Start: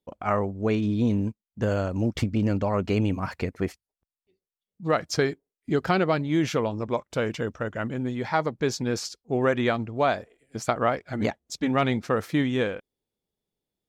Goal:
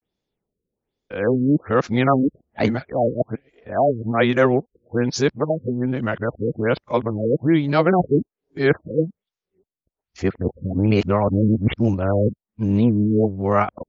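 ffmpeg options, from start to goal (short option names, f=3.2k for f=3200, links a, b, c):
-af "areverse,afftfilt=real='re*lt(b*sr/1024,530*pow(7400/530,0.5+0.5*sin(2*PI*1.2*pts/sr)))':imag='im*lt(b*sr/1024,530*pow(7400/530,0.5+0.5*sin(2*PI*1.2*pts/sr)))':win_size=1024:overlap=0.75,volume=6.5dB"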